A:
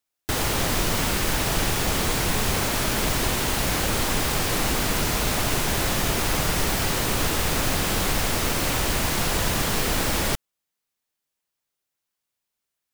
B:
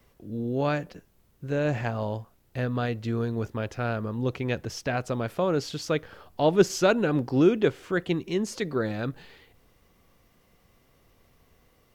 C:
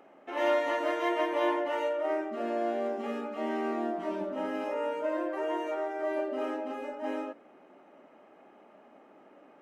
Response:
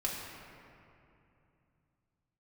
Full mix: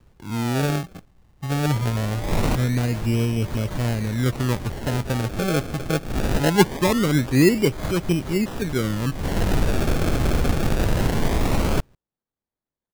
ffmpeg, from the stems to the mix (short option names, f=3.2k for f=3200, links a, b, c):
-filter_complex "[0:a]adynamicsmooth=sensitivity=8:basefreq=1.4k,adelay=1450,volume=-0.5dB[a];[1:a]equalizer=f=950:w=0.51:g=-7.5,volume=2.5dB,asplit=2[b][c];[2:a]adelay=1750,volume=-14.5dB[d];[c]apad=whole_len=634359[e];[a][e]sidechaincompress=threshold=-49dB:ratio=4:attack=16:release=119[f];[f][b][d]amix=inputs=3:normalize=0,lowshelf=f=370:g=7.5,acrusher=samples=31:mix=1:aa=0.000001:lfo=1:lforange=31:lforate=0.22"